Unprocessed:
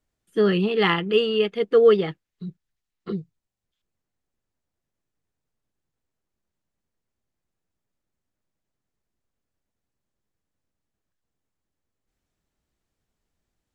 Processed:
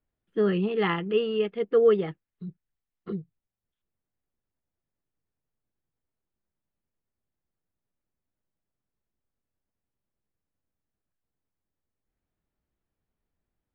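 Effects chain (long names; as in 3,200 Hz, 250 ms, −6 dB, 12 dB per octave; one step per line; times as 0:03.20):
high-frequency loss of the air 370 metres
level −3.5 dB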